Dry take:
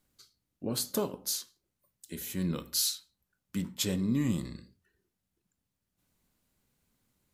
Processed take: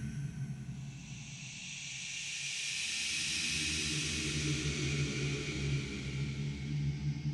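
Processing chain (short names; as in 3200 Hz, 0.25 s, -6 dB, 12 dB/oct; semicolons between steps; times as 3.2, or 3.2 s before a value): echoes that change speed 80 ms, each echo -5 st, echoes 3, each echo -6 dB; Paulstretch 13×, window 0.25 s, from 4.91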